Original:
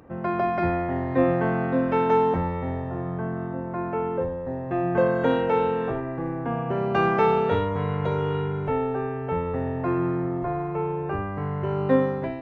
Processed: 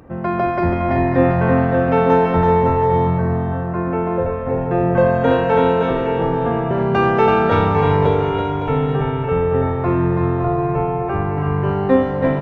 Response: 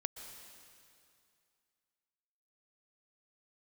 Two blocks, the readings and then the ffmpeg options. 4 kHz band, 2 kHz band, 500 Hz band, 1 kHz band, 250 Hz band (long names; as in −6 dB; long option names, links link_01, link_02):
+8.0 dB, +7.5 dB, +7.5 dB, +8.0 dB, +7.5 dB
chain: -filter_complex "[0:a]aecho=1:1:330|561|722.7|835.9|915.1:0.631|0.398|0.251|0.158|0.1,asplit=2[link_01][link_02];[1:a]atrim=start_sample=2205,lowshelf=frequency=140:gain=9[link_03];[link_02][link_03]afir=irnorm=-1:irlink=0,volume=4.5dB[link_04];[link_01][link_04]amix=inputs=2:normalize=0,volume=-2.5dB"